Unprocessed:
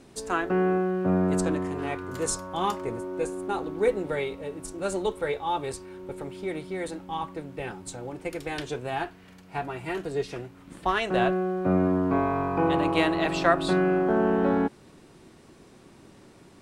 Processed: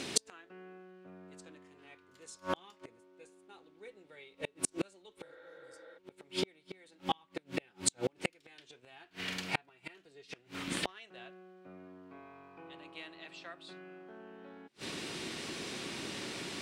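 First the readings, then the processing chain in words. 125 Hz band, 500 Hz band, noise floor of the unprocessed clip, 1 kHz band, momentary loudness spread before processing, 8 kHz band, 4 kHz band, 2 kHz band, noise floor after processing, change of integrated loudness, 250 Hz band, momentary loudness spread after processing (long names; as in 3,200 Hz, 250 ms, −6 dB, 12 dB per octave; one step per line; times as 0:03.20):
−18.5 dB, −18.0 dB, −53 dBFS, −16.5 dB, 13 LU, −1.0 dB, −2.5 dB, −11.0 dB, −68 dBFS, −12.0 dB, −18.0 dB, 19 LU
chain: healed spectral selection 0:05.28–0:05.95, 290–4,400 Hz before
gate with flip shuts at −27 dBFS, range −40 dB
in parallel at −2 dB: downward compressor, threshold −60 dBFS, peak gain reduction 23.5 dB
on the sum: meter weighting curve D
level +7.5 dB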